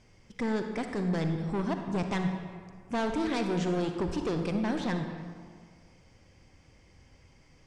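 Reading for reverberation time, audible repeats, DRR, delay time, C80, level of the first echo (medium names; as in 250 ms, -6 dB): 1.9 s, no echo, 5.0 dB, no echo, 7.0 dB, no echo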